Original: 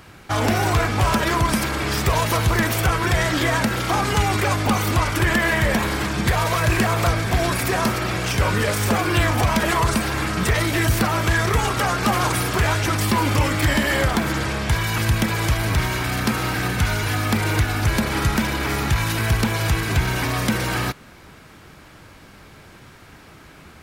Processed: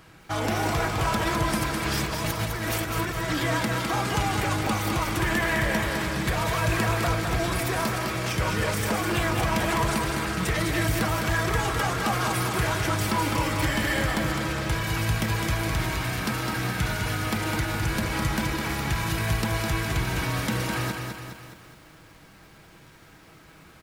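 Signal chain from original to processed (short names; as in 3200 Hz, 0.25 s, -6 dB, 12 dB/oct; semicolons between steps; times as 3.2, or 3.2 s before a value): comb 6.2 ms, depth 32%; 1.85–3.33 negative-ratio compressor -22 dBFS, ratio -0.5; lo-fi delay 0.207 s, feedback 55%, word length 8-bit, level -5 dB; gain -7 dB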